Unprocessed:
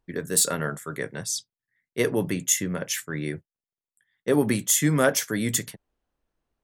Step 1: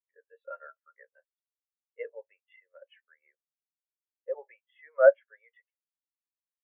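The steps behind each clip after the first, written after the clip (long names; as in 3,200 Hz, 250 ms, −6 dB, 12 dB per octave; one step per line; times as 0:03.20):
elliptic band-pass filter 540–2,900 Hz, stop band 40 dB
every bin expanded away from the loudest bin 2.5 to 1
level +3.5 dB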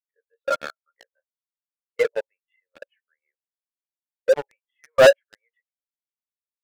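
leveller curve on the samples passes 5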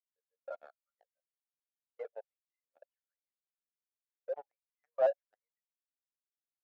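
resonant band-pass 720 Hz, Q 5.8
level −8.5 dB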